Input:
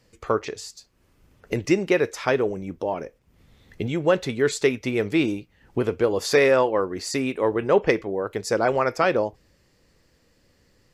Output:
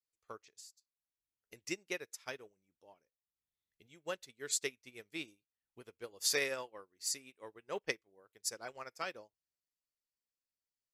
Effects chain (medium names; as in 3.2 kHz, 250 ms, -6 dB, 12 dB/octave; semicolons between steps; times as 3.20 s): pre-emphasis filter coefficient 0.9; upward expansion 2.5:1, over -50 dBFS; trim +1 dB